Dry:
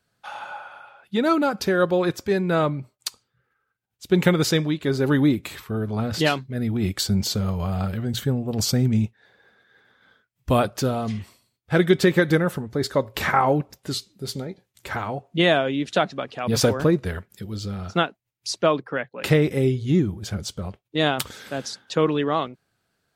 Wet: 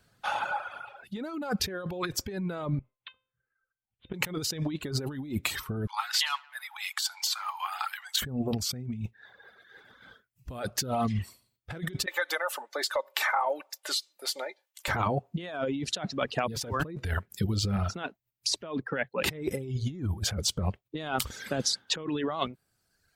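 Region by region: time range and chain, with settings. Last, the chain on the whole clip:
2.79–4.14 s: steep low-pass 3.6 kHz 96 dB/octave + feedback comb 520 Hz, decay 0.37 s, mix 80%
5.87–8.22 s: Chebyshev high-pass 840 Hz, order 6 + filtered feedback delay 86 ms, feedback 71%, low-pass 2.5 kHz, level -20 dB
12.06–14.88 s: high-pass 610 Hz 24 dB/octave + comb 3.4 ms, depth 41% + compression 2.5:1, threshold -34 dBFS
whole clip: reverb removal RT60 0.86 s; bass shelf 82 Hz +7.5 dB; compressor with a negative ratio -31 dBFS, ratio -1; trim -1 dB

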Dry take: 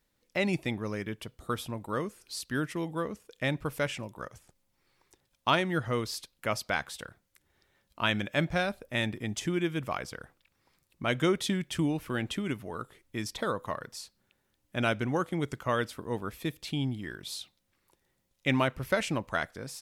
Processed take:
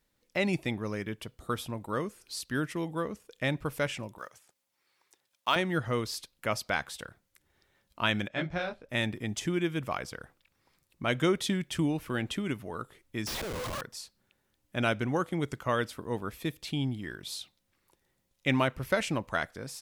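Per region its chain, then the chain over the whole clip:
4.18–5.56 s: block-companded coder 7-bit + high-pass 800 Hz 6 dB/octave
8.28–8.89 s: low-pass 4.7 kHz + detune thickener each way 52 cents
13.27–13.81 s: one-bit delta coder 32 kbps, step -29.5 dBFS + compressor with a negative ratio -36 dBFS + Schmitt trigger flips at -39.5 dBFS
whole clip: none

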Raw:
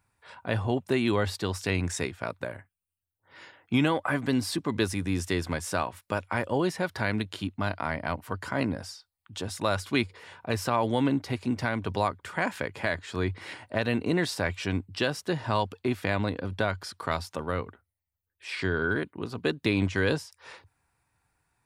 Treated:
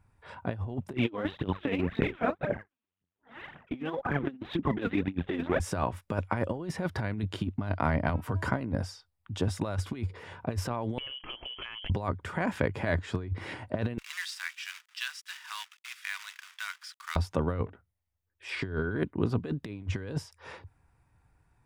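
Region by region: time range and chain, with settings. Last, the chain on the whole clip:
0.93–5.60 s: LPC vocoder at 8 kHz pitch kept + phaser 1.9 Hz, delay 4.5 ms, feedback 69% + high-pass 190 Hz
8.09–8.50 s: treble shelf 8.3 kHz +3.5 dB + de-hum 323.8 Hz, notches 30 + three bands compressed up and down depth 100%
10.98–11.90 s: frequency inversion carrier 3.2 kHz + compression 16:1, threshold -35 dBFS
13.98–17.16 s: companded quantiser 4-bit + Bessel high-pass 2.2 kHz, order 8 + treble shelf 11 kHz -8.5 dB
17.66–18.50 s: bass shelf 270 Hz -7.5 dB + hum notches 60/120/180 Hz + transformer saturation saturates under 3.4 kHz
whole clip: tilt EQ -2.5 dB/octave; band-stop 4.2 kHz, Q 14; compressor with a negative ratio -27 dBFS, ratio -0.5; trim -2 dB

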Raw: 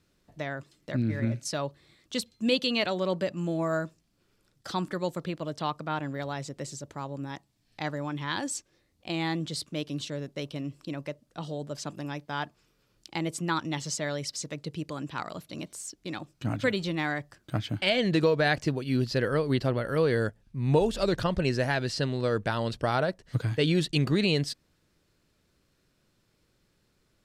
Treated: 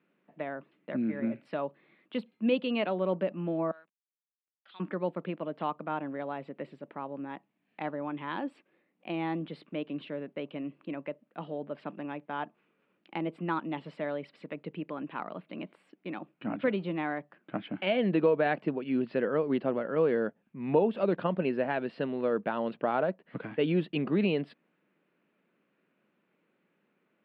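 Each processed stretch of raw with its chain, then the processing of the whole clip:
3.71–4.80 s: band-pass filter 3.5 kHz, Q 3.4 + hysteresis with a dead band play -59 dBFS
whole clip: elliptic band-pass 190–2600 Hz, stop band 40 dB; dynamic bell 2 kHz, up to -7 dB, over -47 dBFS, Q 1.4

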